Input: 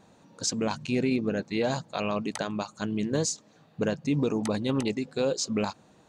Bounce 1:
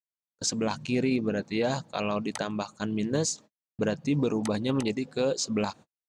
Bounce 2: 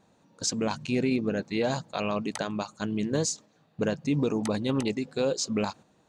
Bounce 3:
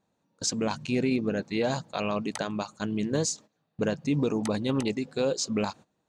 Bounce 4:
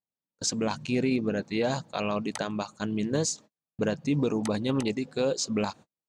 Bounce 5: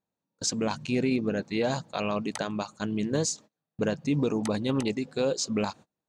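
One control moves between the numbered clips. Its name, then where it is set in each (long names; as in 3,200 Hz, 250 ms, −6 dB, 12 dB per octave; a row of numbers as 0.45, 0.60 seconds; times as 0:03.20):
noise gate, range: −59, −6, −18, −44, −31 decibels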